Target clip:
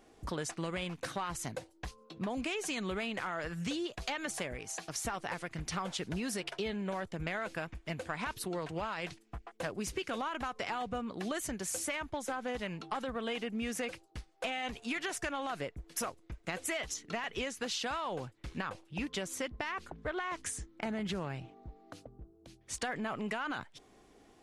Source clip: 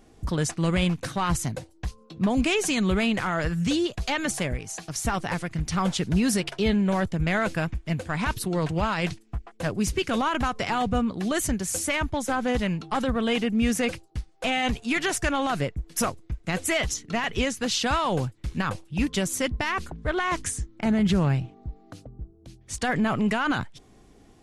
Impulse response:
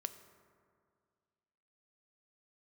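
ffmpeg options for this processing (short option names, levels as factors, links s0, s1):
-filter_complex "[0:a]bass=f=250:g=-11,treble=f=4000:g=-3,acompressor=threshold=0.0282:ratio=6,asettb=1/sr,asplit=3[s0][s1][s2];[s0]atrim=end=18.004[s3];[s1]atrim=start=18:end=20.39,asetpts=PTS-STARTPTS,afade=t=in:d=0.004:c=qsin,afade=t=out:st=2.386:d=0.004:c=qsin,highshelf=f=8000:g=-7[s4];[s2]atrim=start=20.386[s5];[s3][s4]acrossfade=d=0.004:c1=hsin:c2=qsin[s6];[s6][s5]acrossfade=d=0.004:c1=qsin:c2=hsin,volume=0.75"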